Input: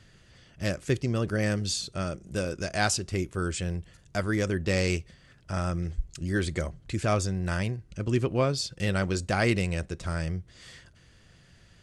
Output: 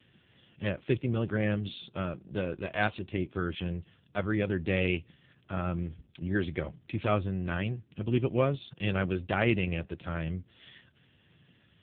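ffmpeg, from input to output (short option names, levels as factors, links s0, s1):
-af "aexciter=amount=1.1:drive=8:freq=2700,volume=0.891" -ar 8000 -c:a libopencore_amrnb -b:a 5900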